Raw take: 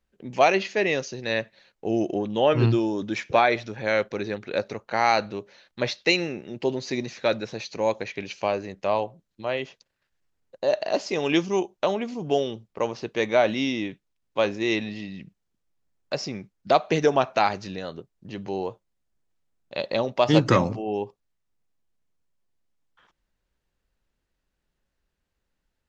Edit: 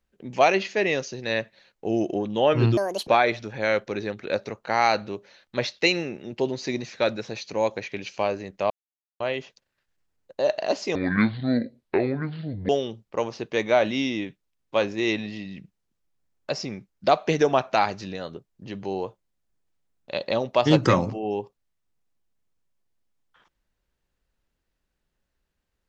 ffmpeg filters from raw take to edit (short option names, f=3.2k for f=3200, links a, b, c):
-filter_complex "[0:a]asplit=7[a][b][c][d][e][f][g];[a]atrim=end=2.774[h];[b]atrim=start=2.77:end=3.31,asetpts=PTS-STARTPTS,asetrate=78939,aresample=44100[i];[c]atrim=start=3.306:end=8.94,asetpts=PTS-STARTPTS,afade=t=out:st=5.63:d=0.004:c=hsin[j];[d]atrim=start=8.94:end=9.44,asetpts=PTS-STARTPTS,volume=0[k];[e]atrim=start=9.44:end=11.194,asetpts=PTS-STARTPTS,afade=t=in:d=0.004:c=hsin[l];[f]atrim=start=11.19:end=12.32,asetpts=PTS-STARTPTS,asetrate=28665,aresample=44100,atrim=end_sample=76666,asetpts=PTS-STARTPTS[m];[g]atrim=start=12.316[n];[h][i]acrossfade=d=0.004:c1=hsin:c2=hsin[o];[j][k][l]concat=n=3:v=0:a=1[p];[o][p]acrossfade=d=0.004:c1=hsin:c2=hsin[q];[q][m]acrossfade=d=0.004:c1=hsin:c2=hsin[r];[r][n]acrossfade=d=0.004:c1=hsin:c2=hsin"